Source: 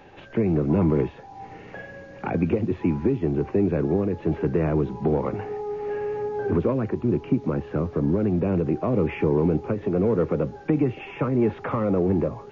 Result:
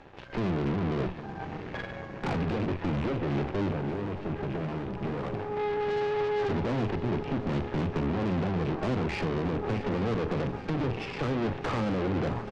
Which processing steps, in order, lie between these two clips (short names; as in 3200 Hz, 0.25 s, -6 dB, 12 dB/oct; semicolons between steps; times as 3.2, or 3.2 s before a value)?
rattling part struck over -29 dBFS, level -32 dBFS; treble ducked by the level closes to 1800 Hz, closed at -17 dBFS; low shelf 210 Hz +4.5 dB; limiter -16.5 dBFS, peak gain reduction 8.5 dB; half-wave rectifier; 3.71–5.57 resonator 410 Hz, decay 0.58 s, mix 60%; soft clip -26.5 dBFS, distortion -9 dB; added harmonics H 7 -21 dB, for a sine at -26.5 dBFS; air absorption 73 m; doubler 43 ms -13 dB; on a send: swung echo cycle 0.831 s, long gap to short 3:1, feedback 59%, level -15 dB; on the sum: gain +6 dB